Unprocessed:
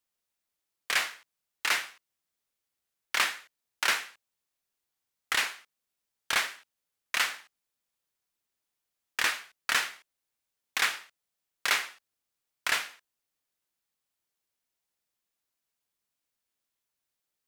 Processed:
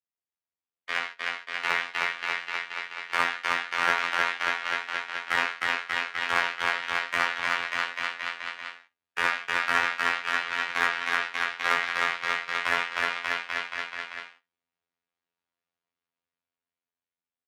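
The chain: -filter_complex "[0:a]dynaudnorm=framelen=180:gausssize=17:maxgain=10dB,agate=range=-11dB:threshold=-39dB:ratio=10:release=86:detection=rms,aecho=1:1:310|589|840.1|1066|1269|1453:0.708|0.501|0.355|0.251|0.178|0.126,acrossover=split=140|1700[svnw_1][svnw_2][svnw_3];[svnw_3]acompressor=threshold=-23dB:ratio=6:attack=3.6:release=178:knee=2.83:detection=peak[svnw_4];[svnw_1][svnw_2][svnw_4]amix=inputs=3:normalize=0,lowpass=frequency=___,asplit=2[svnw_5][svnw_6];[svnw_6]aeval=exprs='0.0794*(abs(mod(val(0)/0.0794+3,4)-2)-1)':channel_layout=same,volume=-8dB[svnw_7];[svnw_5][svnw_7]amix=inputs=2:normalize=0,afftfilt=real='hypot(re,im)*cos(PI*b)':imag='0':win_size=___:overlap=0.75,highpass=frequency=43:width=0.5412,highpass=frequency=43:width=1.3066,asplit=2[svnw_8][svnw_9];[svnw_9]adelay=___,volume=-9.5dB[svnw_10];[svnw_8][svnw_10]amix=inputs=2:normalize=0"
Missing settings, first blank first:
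2.8k, 2048, 19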